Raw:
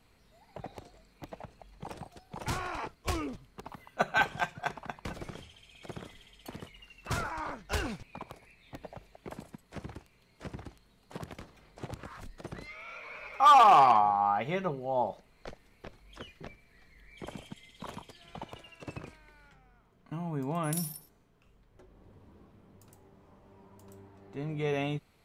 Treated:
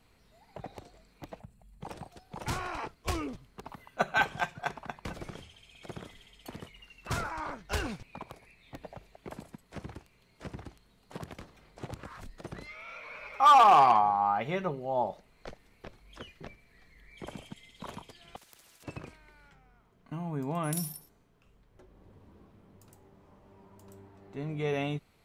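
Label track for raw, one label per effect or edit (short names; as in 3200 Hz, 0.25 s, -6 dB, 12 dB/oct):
1.400000	1.820000	spectral gain 250–7000 Hz -13 dB
18.360000	18.840000	spectral compressor 10:1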